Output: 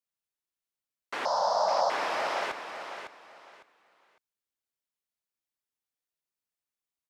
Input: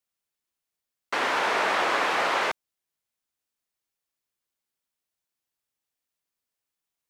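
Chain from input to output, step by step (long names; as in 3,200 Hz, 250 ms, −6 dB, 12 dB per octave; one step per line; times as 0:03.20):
0:01.25–0:01.90: drawn EQ curve 180 Hz 0 dB, 380 Hz −19 dB, 570 Hz +13 dB, 1,000 Hz +8 dB, 2,400 Hz −29 dB, 5,100 Hz +15 dB, 9,700 Hz −16 dB
on a send: repeating echo 555 ms, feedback 24%, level −8.5 dB
on the sum: level −8 dB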